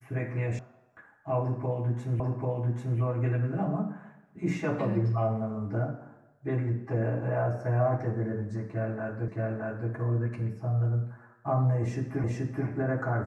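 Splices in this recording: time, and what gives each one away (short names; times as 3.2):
0.59 sound cut off
2.2 repeat of the last 0.79 s
9.28 repeat of the last 0.62 s
12.24 repeat of the last 0.43 s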